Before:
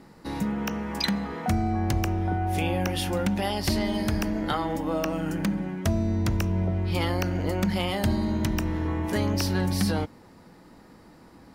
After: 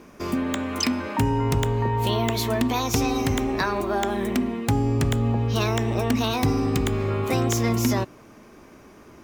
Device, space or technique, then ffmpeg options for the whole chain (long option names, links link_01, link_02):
nightcore: -af "asetrate=55125,aresample=44100,volume=3dB"